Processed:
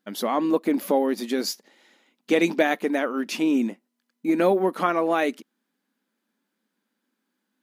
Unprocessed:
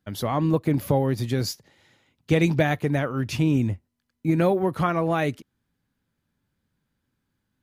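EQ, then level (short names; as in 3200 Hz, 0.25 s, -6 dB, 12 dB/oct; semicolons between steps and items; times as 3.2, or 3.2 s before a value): brick-wall FIR high-pass 190 Hz; +2.0 dB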